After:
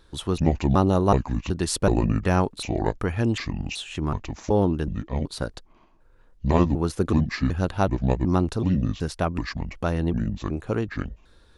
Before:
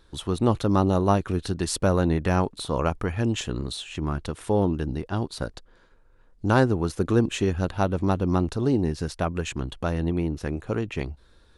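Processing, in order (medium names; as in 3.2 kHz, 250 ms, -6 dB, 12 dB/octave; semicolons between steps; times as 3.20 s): pitch shift switched off and on -7 st, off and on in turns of 375 ms; trim +1.5 dB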